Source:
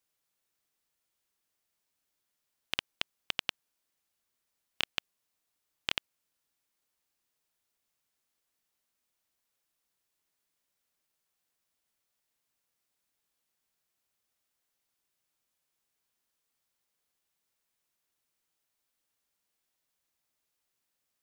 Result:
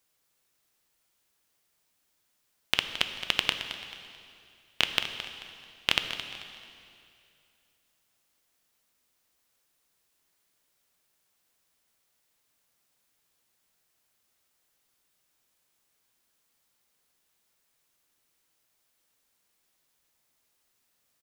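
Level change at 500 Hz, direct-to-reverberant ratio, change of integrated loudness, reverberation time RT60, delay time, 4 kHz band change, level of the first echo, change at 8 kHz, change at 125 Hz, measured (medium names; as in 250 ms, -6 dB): +8.5 dB, 6.0 dB, +7.0 dB, 2.5 s, 219 ms, +8.5 dB, -12.0 dB, +8.5 dB, +9.0 dB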